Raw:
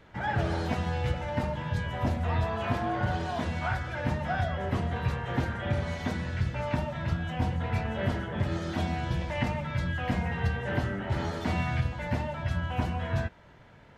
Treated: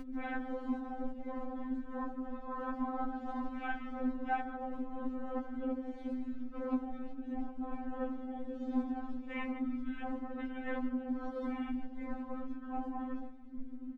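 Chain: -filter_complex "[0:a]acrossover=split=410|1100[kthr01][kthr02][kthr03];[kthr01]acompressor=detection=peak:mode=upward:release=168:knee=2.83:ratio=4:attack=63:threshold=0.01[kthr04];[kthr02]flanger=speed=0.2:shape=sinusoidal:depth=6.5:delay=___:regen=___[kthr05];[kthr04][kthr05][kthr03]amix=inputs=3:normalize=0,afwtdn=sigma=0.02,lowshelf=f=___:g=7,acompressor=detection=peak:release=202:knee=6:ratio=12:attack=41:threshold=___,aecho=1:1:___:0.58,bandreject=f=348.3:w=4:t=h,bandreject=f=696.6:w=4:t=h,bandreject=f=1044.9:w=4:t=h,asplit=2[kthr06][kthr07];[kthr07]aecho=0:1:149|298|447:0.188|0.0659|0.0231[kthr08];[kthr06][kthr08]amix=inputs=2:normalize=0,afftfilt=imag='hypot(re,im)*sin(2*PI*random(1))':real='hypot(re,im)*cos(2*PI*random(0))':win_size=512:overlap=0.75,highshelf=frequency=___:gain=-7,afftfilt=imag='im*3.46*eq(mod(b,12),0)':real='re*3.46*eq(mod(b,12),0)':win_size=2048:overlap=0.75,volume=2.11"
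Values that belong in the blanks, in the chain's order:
6.2, 83, 210, 0.0282, 6.8, 4400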